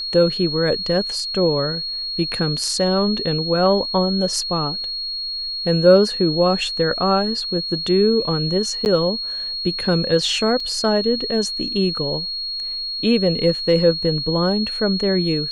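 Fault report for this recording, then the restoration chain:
tone 4300 Hz -24 dBFS
8.85–8.86 gap 9.8 ms
10.6 gap 3.3 ms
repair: notch 4300 Hz, Q 30; interpolate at 8.85, 9.8 ms; interpolate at 10.6, 3.3 ms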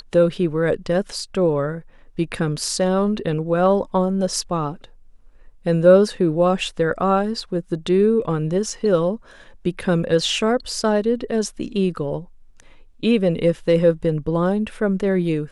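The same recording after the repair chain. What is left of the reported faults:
none

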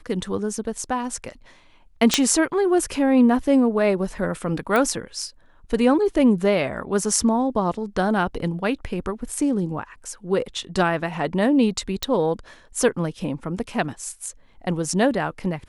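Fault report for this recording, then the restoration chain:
2.14 pop 0 dBFS
4.76 pop -9 dBFS
12.03 pop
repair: de-click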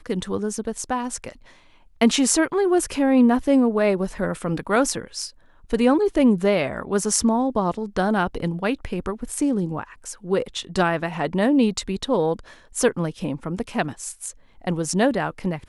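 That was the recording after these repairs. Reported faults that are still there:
none

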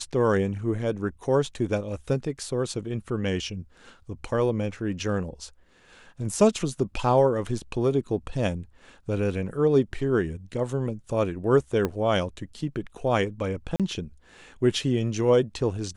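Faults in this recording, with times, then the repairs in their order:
11.85 pop -13 dBFS
13.76–13.8 gap 37 ms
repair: de-click; interpolate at 13.76, 37 ms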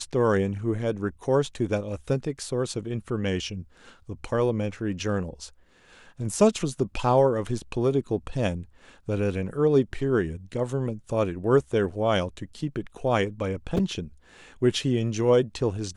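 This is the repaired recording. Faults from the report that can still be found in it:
11.85 pop

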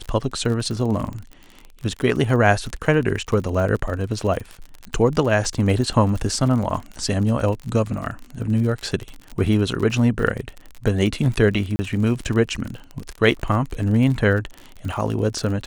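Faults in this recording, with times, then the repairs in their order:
crackle 49/s -27 dBFS
11.76–11.79 gap 30 ms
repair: de-click; interpolate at 11.76, 30 ms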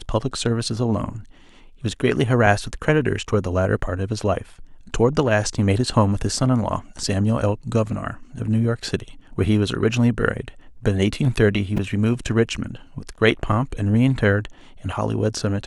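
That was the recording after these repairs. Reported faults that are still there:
none

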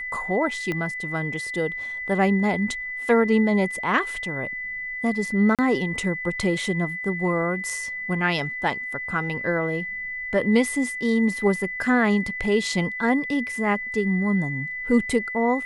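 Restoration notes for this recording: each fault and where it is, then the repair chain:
tone 2000 Hz -29 dBFS
0.72 pop -15 dBFS
5.55–5.59 gap 37 ms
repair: de-click; notch 2000 Hz, Q 30; interpolate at 5.55, 37 ms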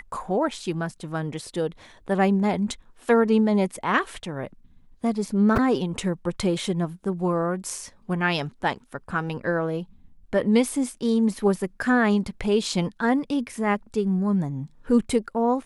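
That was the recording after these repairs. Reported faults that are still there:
0.72 pop

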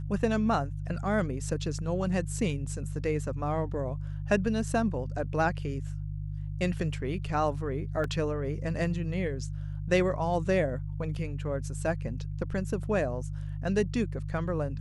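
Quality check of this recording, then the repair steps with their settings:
hum 50 Hz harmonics 3 -35 dBFS
8.04 gap 2.5 ms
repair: de-hum 50 Hz, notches 3; interpolate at 8.04, 2.5 ms

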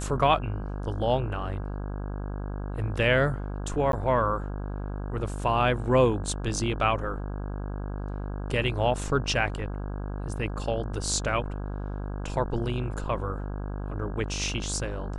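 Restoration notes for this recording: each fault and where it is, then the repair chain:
buzz 50 Hz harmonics 33 -33 dBFS
3.92–3.93 gap 12 ms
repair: de-hum 50 Hz, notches 33; interpolate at 3.92, 12 ms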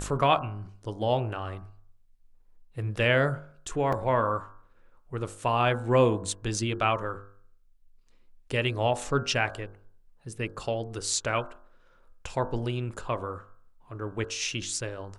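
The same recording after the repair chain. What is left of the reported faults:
none

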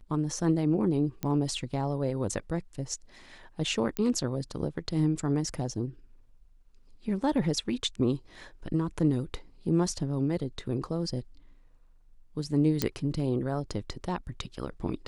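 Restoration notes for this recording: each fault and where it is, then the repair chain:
1.23 pop -19 dBFS
3.97 pop -16 dBFS
12.82 pop -10 dBFS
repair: de-click

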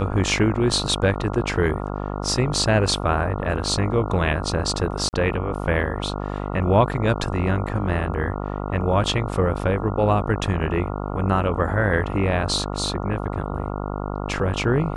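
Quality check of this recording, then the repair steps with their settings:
buzz 50 Hz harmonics 28 -28 dBFS
5.09–5.13 gap 39 ms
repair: de-hum 50 Hz, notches 28; interpolate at 5.09, 39 ms

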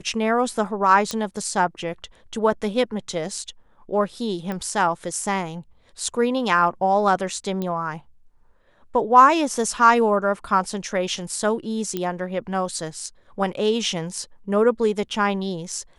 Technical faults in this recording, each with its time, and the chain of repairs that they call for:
1.11 pop
4.52 pop -17 dBFS
7.62 pop -16 dBFS
11.97 pop -13 dBFS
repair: de-click

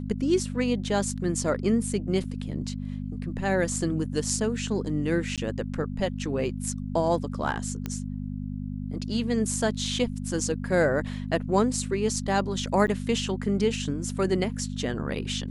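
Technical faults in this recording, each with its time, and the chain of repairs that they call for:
hum 50 Hz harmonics 5 -33 dBFS
2.24 gap 3.1 ms
5.36–5.38 gap 17 ms
7.86 pop -17 dBFS
12.87–12.88 gap 9.6 ms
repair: de-click; de-hum 50 Hz, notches 5; interpolate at 2.24, 3.1 ms; interpolate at 5.36, 17 ms; interpolate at 12.87, 9.6 ms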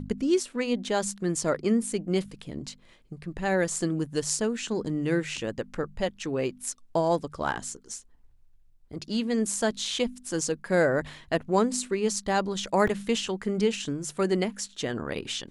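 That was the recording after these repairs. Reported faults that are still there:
none

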